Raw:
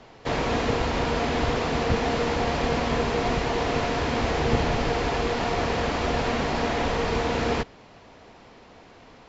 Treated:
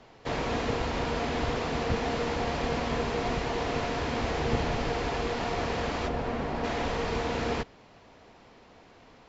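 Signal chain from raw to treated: 6.07–6.63 high shelf 2000 Hz -> 2700 Hz -11.5 dB; gain -5 dB

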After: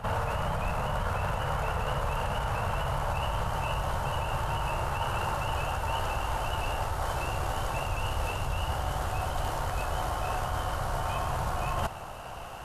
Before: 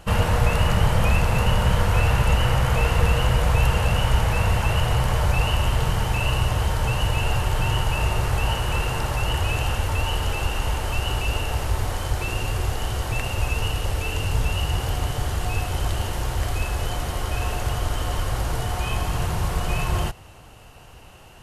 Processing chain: granular stretch 0.59×, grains 29 ms; limiter -14.5 dBFS, peak gain reduction 7 dB; band shelf 920 Hz +8.5 dB; reverse; compressor 6:1, threshold -31 dBFS, peak gain reduction 13 dB; reverse; pre-echo 54 ms -13 dB; gain +3 dB

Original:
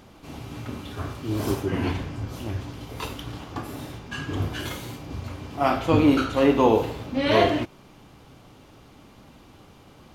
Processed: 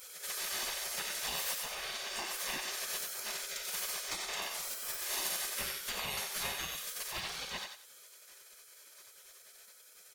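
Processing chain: small resonant body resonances 310/2200 Hz, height 8 dB, ringing for 25 ms; vocal rider within 5 dB 2 s; tilt shelf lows -7.5 dB, about 1500 Hz; comb 1.1 ms, depth 87%; compressor 12:1, threshold -31 dBFS, peak gain reduction 17.5 dB; 4.93–7.11 bell 12000 Hz +11.5 dB 1.2 oct; hard clip -28.5 dBFS, distortion -19 dB; spectral gate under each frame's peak -20 dB weak; thinning echo 92 ms, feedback 30%, high-pass 530 Hz, level -5 dB; gain +6 dB

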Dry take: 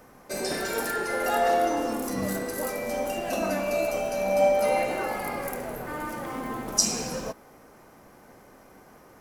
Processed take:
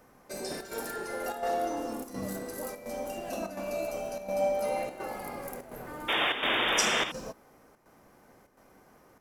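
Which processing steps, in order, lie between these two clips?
dynamic EQ 2000 Hz, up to -4 dB, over -41 dBFS, Q 0.97; painted sound noise, 6.08–7.12, 290–3700 Hz -21 dBFS; chopper 1.4 Hz, depth 60%, duty 85%; gain -6.5 dB

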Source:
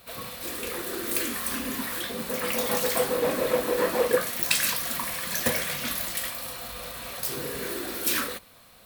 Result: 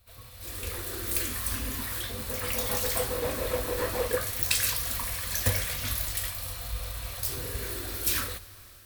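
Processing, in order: EQ curve 100 Hz 0 dB, 160 Hz -22 dB, 2800 Hz -18 dB, 5400 Hz -15 dB; AGC gain up to 11.5 dB; reverb RT60 5.2 s, pre-delay 31 ms, DRR 17.5 dB; gain +2.5 dB

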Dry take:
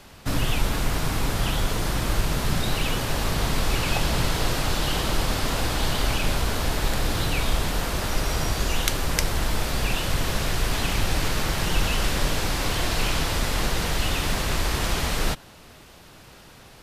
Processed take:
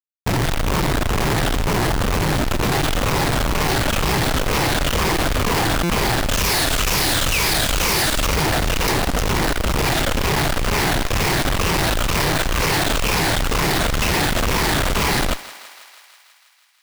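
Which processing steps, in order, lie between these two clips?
moving spectral ripple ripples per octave 0.81, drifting -2.1 Hz, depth 17 dB; high shelf 2800 Hz +3 dB, from 6.29 s +12 dB, from 8.26 s +4 dB; Schmitt trigger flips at -23.5 dBFS; thinning echo 0.162 s, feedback 73%, high-pass 500 Hz, level -15.5 dB; stuck buffer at 5.83, samples 256, times 10; gain +1 dB

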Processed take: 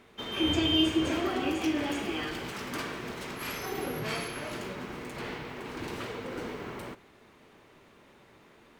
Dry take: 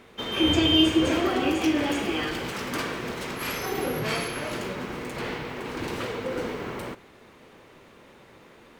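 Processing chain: notch 510 Hz, Q 12; gain -5.5 dB

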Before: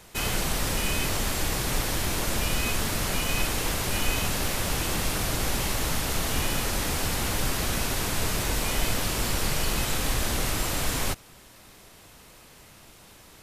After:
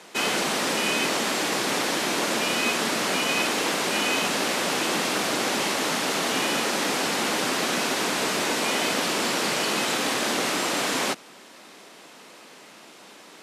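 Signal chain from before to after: HPF 220 Hz 24 dB/oct; air absorption 51 m; gain +6.5 dB

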